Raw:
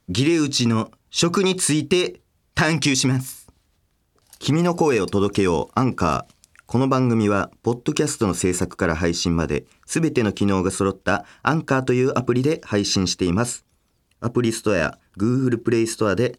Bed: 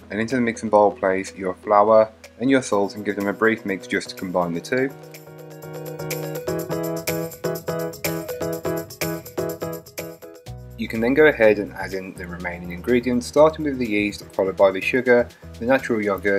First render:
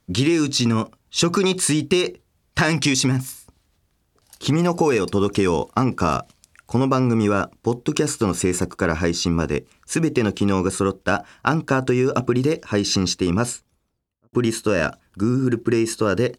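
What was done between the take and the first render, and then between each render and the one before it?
0:13.44–0:14.33: fade out and dull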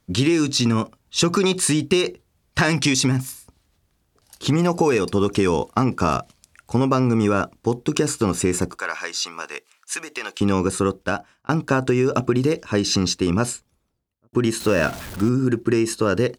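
0:08.78–0:10.41: high-pass filter 1,000 Hz
0:10.94–0:11.49: fade out
0:14.60–0:15.29: converter with a step at zero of −29 dBFS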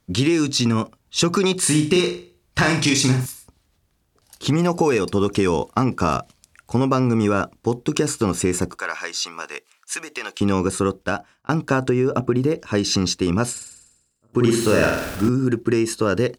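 0:01.59–0:03.26: flutter between parallel walls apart 6.8 metres, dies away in 0.4 s
0:11.89–0:12.61: parametric band 5,700 Hz −8.5 dB 2.6 octaves
0:13.51–0:15.29: flutter between parallel walls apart 8.5 metres, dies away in 0.85 s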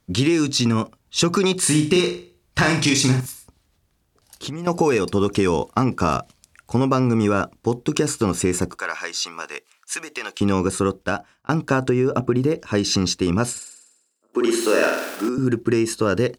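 0:03.20–0:04.67: downward compressor, threshold −27 dBFS
0:13.59–0:15.38: high-pass filter 280 Hz 24 dB per octave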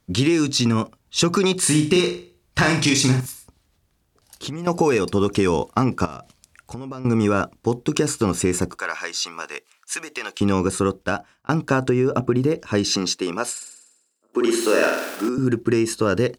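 0:06.05–0:07.05: downward compressor 10 to 1, threshold −29 dBFS
0:12.85–0:13.60: high-pass filter 180 Hz → 600 Hz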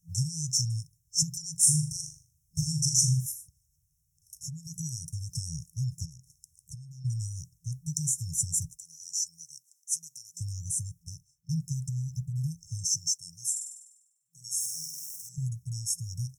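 brick-wall band-stop 170–5,300 Hz
low-shelf EQ 130 Hz −11 dB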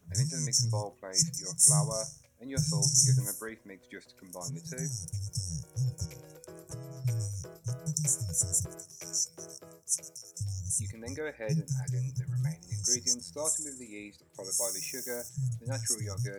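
mix in bed −23.5 dB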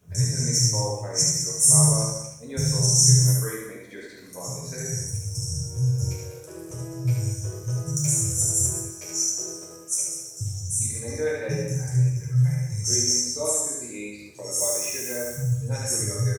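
multi-tap delay 73/198 ms −3.5/−9.5 dB
coupled-rooms reverb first 0.67 s, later 1.8 s, from −27 dB, DRR −4 dB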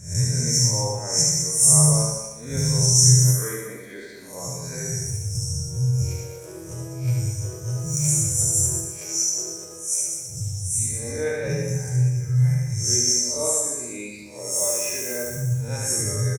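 peak hold with a rise ahead of every peak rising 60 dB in 0.45 s
repeating echo 120 ms, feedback 42%, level −10 dB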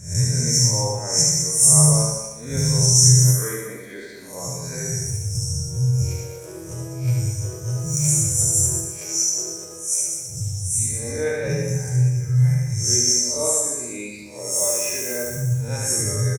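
level +2 dB
brickwall limiter −2 dBFS, peak gain reduction 1.5 dB

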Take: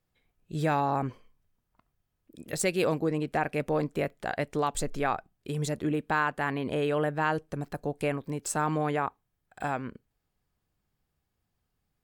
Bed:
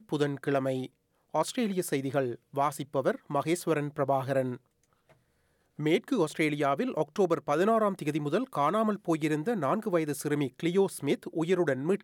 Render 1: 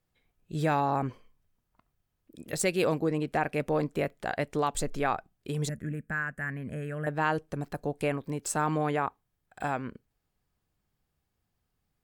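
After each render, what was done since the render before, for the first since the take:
0:05.69–0:07.07: drawn EQ curve 210 Hz 0 dB, 340 Hz −14 dB, 630 Hz −10 dB, 900 Hz −21 dB, 1,700 Hz +1 dB, 3,800 Hz −25 dB, 7,300 Hz −4 dB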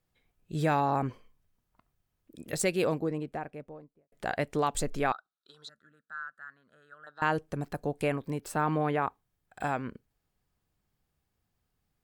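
0:02.46–0:04.12: fade out and dull
0:05.12–0:07.22: pair of resonant band-passes 2,300 Hz, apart 1.5 octaves
0:08.40–0:09.02: parametric band 7,300 Hz −12.5 dB 1 octave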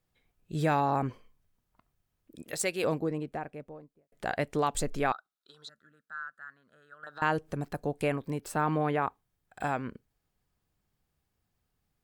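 0:02.42–0:02.84: low-shelf EQ 310 Hz −12 dB
0:07.03–0:07.52: upward compression, threshold −35 dBFS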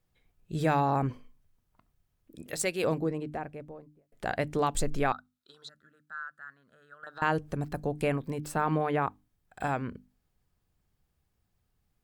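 low-shelf EQ 170 Hz +6.5 dB
mains-hum notches 50/100/150/200/250/300 Hz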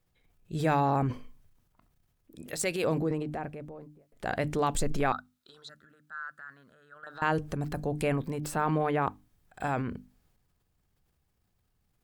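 transient designer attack −1 dB, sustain +7 dB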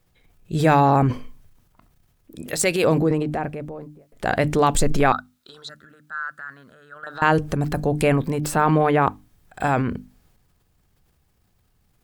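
level +10 dB

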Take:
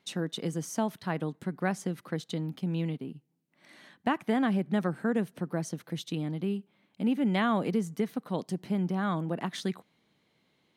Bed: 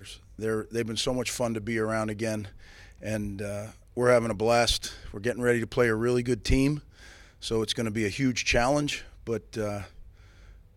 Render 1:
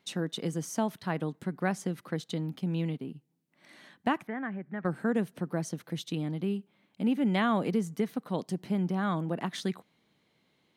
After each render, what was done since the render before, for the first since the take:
0:04.27–0:04.85: transistor ladder low-pass 2,100 Hz, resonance 55%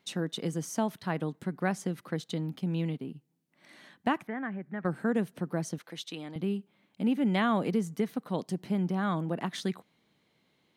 0:05.78–0:06.36: meter weighting curve A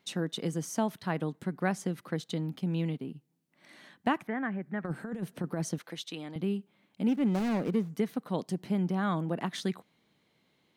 0:04.25–0:05.95: compressor whose output falls as the input rises −31 dBFS, ratio −0.5
0:07.08–0:07.95: running median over 41 samples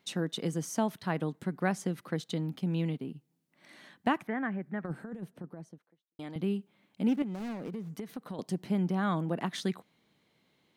0:04.36–0:06.19: fade out and dull
0:07.22–0:08.39: downward compressor 12 to 1, threshold −34 dBFS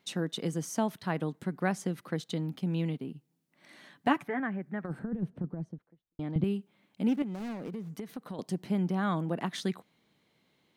0:03.94–0:04.40: comb filter 7 ms
0:04.99–0:06.44: RIAA equalisation playback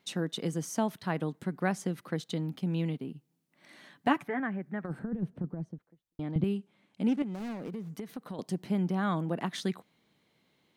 0:06.54–0:07.33: low-pass filter 11,000 Hz 24 dB per octave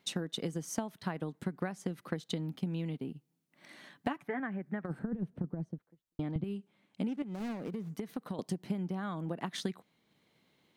downward compressor 8 to 1, threshold −33 dBFS, peak gain reduction 13 dB
transient designer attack +3 dB, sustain −3 dB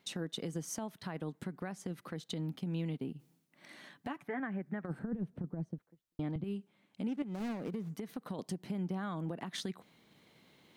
brickwall limiter −28.5 dBFS, peak gain reduction 11 dB
reversed playback
upward compression, threshold −55 dBFS
reversed playback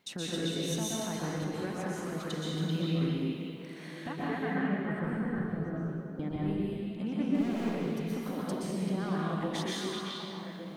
echo through a band-pass that steps 386 ms, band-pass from 3,200 Hz, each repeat −1.4 octaves, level −1.5 dB
dense smooth reverb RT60 1.6 s, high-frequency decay 0.95×, pre-delay 110 ms, DRR −6 dB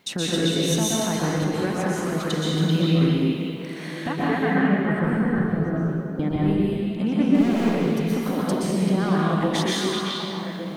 level +11 dB

